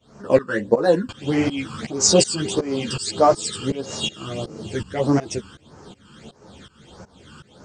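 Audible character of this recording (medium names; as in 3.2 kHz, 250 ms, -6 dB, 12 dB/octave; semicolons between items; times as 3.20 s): phasing stages 12, 1.6 Hz, lowest notch 640–3300 Hz; tremolo saw up 2.7 Hz, depth 95%; a shimmering, thickened sound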